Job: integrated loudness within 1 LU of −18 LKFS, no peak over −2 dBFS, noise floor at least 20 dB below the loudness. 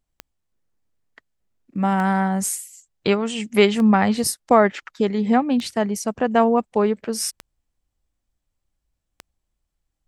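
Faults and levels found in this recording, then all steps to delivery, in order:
number of clicks 6; integrated loudness −20.5 LKFS; sample peak −3.0 dBFS; target loudness −18.0 LKFS
→ click removal
level +2.5 dB
brickwall limiter −2 dBFS

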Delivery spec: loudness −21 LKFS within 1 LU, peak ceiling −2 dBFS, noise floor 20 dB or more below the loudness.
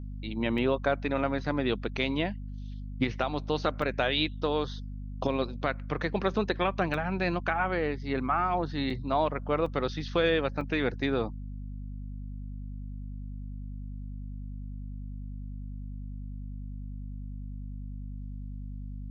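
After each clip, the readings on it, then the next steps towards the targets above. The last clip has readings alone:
number of dropouts 6; longest dropout 3.4 ms; mains hum 50 Hz; hum harmonics up to 250 Hz; level of the hum −36 dBFS; integrated loudness −32.0 LKFS; sample peak −11.5 dBFS; target loudness −21.0 LKFS
→ repair the gap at 0:00.58/0:03.82/0:06.94/0:08.90/0:09.66/0:10.61, 3.4 ms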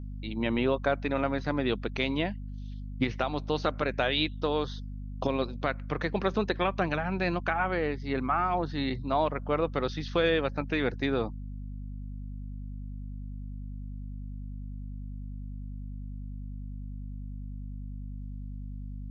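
number of dropouts 0; mains hum 50 Hz; hum harmonics up to 250 Hz; level of the hum −36 dBFS
→ hum removal 50 Hz, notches 5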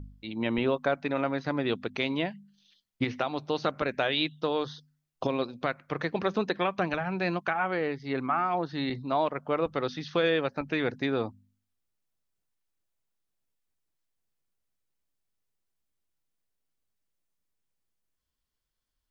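mains hum none found; integrated loudness −30.0 LKFS; sample peak −11.5 dBFS; target loudness −21.0 LKFS
→ level +9 dB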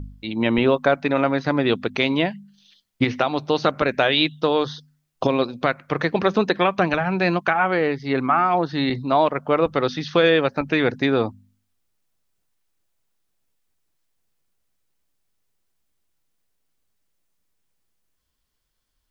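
integrated loudness −21.0 LKFS; sample peak −2.5 dBFS; background noise floor −74 dBFS

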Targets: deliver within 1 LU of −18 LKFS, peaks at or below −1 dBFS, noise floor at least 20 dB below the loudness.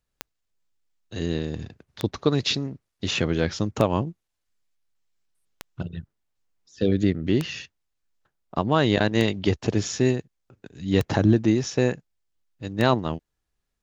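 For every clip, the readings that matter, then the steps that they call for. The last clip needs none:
number of clicks 8; integrated loudness −24.5 LKFS; sample peak −4.5 dBFS; target loudness −18.0 LKFS
→ click removal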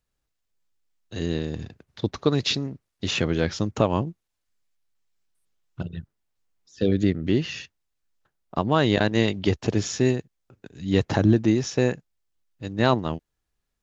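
number of clicks 0; integrated loudness −24.5 LKFS; sample peak −4.5 dBFS; target loudness −18.0 LKFS
→ level +6.5 dB
brickwall limiter −1 dBFS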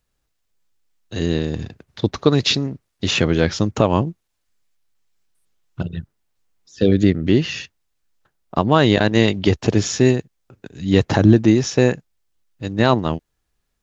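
integrated loudness −18.5 LKFS; sample peak −1.0 dBFS; background noise floor −73 dBFS

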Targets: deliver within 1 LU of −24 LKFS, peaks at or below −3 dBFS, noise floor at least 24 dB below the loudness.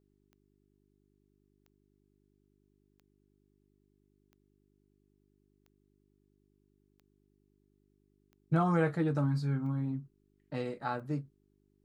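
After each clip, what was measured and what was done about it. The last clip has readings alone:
number of clicks 9; mains hum 50 Hz; hum harmonics up to 400 Hz; level of the hum −70 dBFS; integrated loudness −33.0 LKFS; sample peak −18.0 dBFS; target loudness −24.0 LKFS
→ click removal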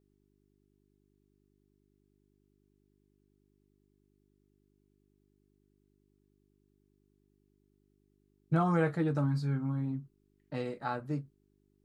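number of clicks 0; mains hum 50 Hz; hum harmonics up to 400 Hz; level of the hum −70 dBFS
→ hum removal 50 Hz, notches 8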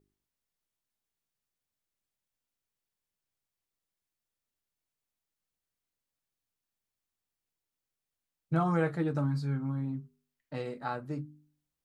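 mains hum none found; integrated loudness −33.0 LKFS; sample peak −16.5 dBFS; target loudness −24.0 LKFS
→ level +9 dB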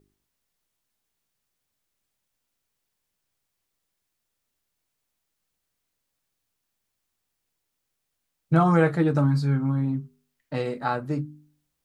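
integrated loudness −24.0 LKFS; sample peak −7.5 dBFS; background noise floor −80 dBFS

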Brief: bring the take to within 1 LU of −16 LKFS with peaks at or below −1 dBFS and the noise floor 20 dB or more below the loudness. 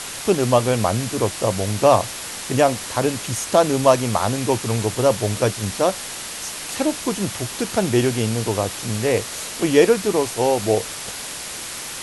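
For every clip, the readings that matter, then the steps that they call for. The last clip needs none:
background noise floor −32 dBFS; target noise floor −41 dBFS; integrated loudness −20.5 LKFS; sample peak −1.5 dBFS; target loudness −16.0 LKFS
→ broadband denoise 9 dB, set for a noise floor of −32 dBFS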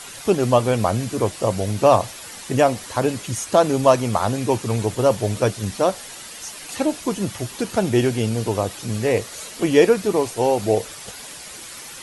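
background noise floor −38 dBFS; target noise floor −41 dBFS
→ broadband denoise 6 dB, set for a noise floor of −38 dBFS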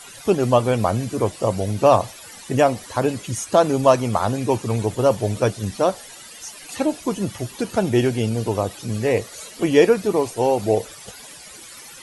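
background noise floor −41 dBFS; integrated loudness −20.5 LKFS; sample peak −2.0 dBFS; target loudness −16.0 LKFS
→ level +4.5 dB
brickwall limiter −1 dBFS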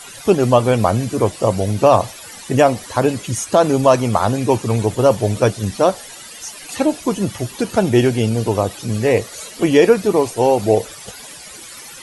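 integrated loudness −16.5 LKFS; sample peak −1.0 dBFS; background noise floor −37 dBFS

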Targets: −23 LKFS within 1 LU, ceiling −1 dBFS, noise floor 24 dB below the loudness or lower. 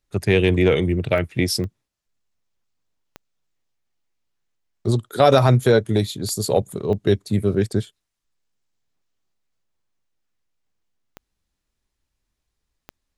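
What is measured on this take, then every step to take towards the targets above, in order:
number of clicks 7; integrated loudness −20.0 LKFS; sample peak −2.0 dBFS; target loudness −23.0 LKFS
→ click removal
level −3 dB

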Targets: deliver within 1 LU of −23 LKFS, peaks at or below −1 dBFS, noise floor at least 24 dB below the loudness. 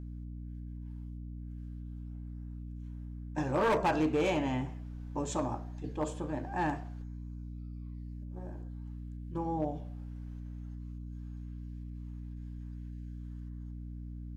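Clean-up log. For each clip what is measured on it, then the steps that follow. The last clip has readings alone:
share of clipped samples 0.6%; peaks flattened at −23.5 dBFS; mains hum 60 Hz; hum harmonics up to 300 Hz; level of the hum −40 dBFS; integrated loudness −38.0 LKFS; sample peak −23.5 dBFS; target loudness −23.0 LKFS
→ clipped peaks rebuilt −23.5 dBFS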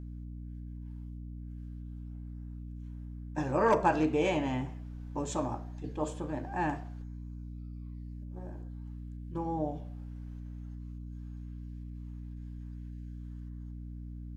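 share of clipped samples 0.0%; mains hum 60 Hz; hum harmonics up to 300 Hz; level of the hum −40 dBFS
→ hum removal 60 Hz, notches 5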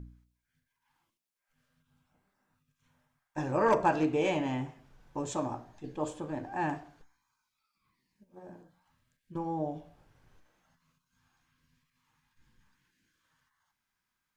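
mains hum none found; integrated loudness −32.5 LKFS; sample peak −14.0 dBFS; target loudness −23.0 LKFS
→ level +9.5 dB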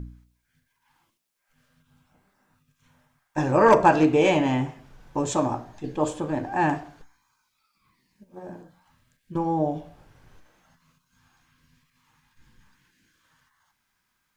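integrated loudness −23.5 LKFS; sample peak −4.5 dBFS; background noise floor −75 dBFS

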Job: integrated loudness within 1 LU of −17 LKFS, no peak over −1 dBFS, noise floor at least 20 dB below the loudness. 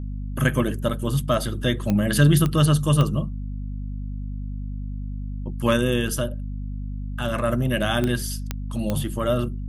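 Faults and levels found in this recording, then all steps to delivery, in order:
number of clicks 6; mains hum 50 Hz; hum harmonics up to 250 Hz; level of the hum −27 dBFS; integrated loudness −24.0 LKFS; sample peak −3.5 dBFS; target loudness −17.0 LKFS
→ click removal
hum removal 50 Hz, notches 5
level +7 dB
brickwall limiter −1 dBFS

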